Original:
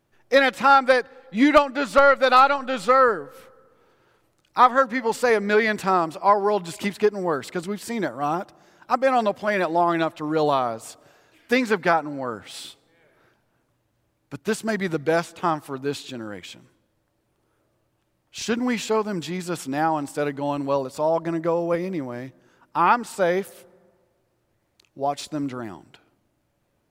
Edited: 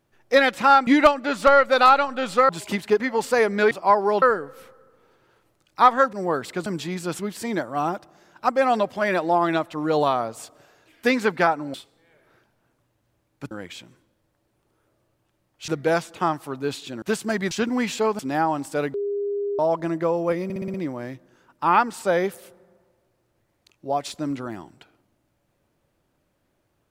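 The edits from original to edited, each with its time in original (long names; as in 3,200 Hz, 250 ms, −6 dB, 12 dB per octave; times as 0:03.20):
0:00.87–0:01.38: remove
0:03.00–0:04.91: swap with 0:06.61–0:07.12
0:05.62–0:06.10: remove
0:12.20–0:12.64: remove
0:14.41–0:14.90: swap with 0:16.24–0:18.41
0:19.09–0:19.62: move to 0:07.65
0:20.37–0:21.02: beep over 405 Hz −23 dBFS
0:21.87: stutter 0.06 s, 6 plays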